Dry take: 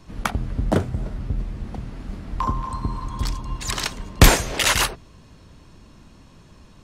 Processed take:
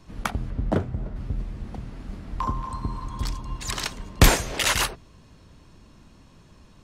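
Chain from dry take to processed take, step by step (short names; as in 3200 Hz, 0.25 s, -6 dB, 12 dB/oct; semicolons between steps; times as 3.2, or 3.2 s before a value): 0.49–1.15 LPF 3200 Hz -> 1700 Hz 6 dB/oct; gain -3.5 dB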